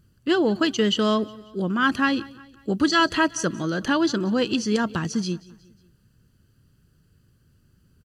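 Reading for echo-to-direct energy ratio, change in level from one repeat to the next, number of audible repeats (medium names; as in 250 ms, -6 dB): -20.5 dB, -6.0 dB, 3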